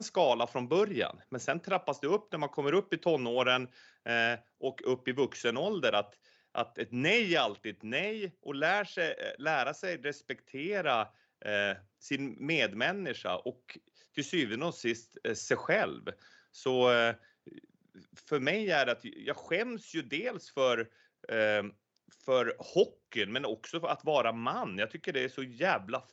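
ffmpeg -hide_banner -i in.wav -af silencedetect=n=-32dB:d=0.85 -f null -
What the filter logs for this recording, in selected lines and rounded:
silence_start: 17.11
silence_end: 18.32 | silence_duration: 1.21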